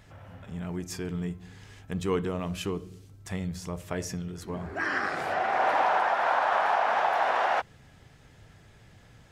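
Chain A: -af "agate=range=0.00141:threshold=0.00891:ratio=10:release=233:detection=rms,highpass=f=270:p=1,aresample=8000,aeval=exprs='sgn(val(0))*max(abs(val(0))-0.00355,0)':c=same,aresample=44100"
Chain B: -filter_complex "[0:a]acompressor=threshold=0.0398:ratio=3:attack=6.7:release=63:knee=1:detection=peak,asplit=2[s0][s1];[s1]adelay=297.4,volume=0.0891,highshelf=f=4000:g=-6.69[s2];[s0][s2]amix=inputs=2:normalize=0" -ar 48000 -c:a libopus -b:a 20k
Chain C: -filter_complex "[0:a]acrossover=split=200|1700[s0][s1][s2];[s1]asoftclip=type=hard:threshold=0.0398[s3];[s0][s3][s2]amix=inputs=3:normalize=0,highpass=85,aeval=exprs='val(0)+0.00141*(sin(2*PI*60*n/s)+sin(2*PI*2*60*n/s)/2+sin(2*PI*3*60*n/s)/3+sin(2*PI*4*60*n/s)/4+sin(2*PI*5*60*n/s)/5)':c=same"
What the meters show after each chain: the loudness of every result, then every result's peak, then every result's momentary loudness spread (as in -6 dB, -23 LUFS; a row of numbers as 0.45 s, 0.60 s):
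-28.5 LUFS, -32.5 LUFS, -31.0 LUFS; -12.5 dBFS, -17.5 dBFS, -19.0 dBFS; 18 LU, 13 LU, 15 LU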